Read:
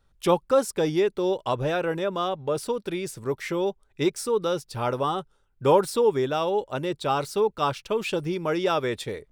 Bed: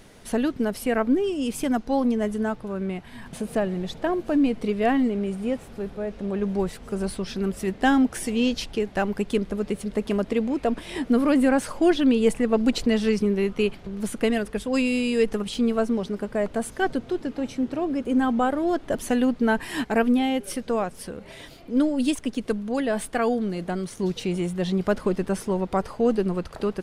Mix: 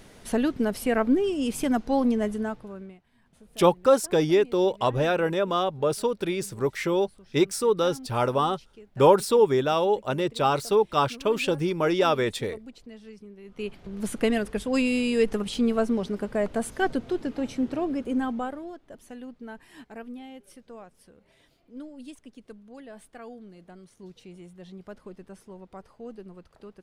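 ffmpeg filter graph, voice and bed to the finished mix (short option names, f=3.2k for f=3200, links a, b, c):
-filter_complex "[0:a]adelay=3350,volume=2dB[a];[1:a]volume=22dB,afade=t=out:st=2.15:d=0.84:silence=0.0707946,afade=t=in:st=13.44:d=0.68:silence=0.0749894,afade=t=out:st=17.75:d=1.01:silence=0.11885[b];[a][b]amix=inputs=2:normalize=0"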